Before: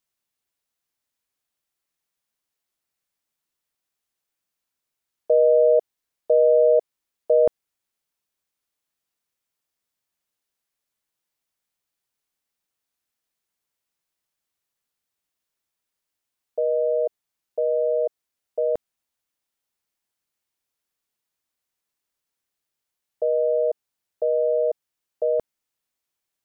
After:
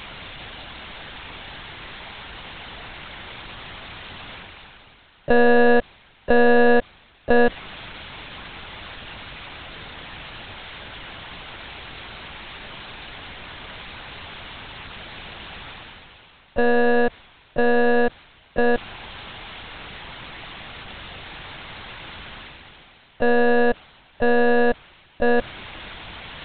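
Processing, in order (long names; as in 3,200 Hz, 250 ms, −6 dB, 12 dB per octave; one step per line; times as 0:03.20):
reversed playback
upward compression, threshold −23 dBFS
reversed playback
power curve on the samples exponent 0.5
one-pitch LPC vocoder at 8 kHz 240 Hz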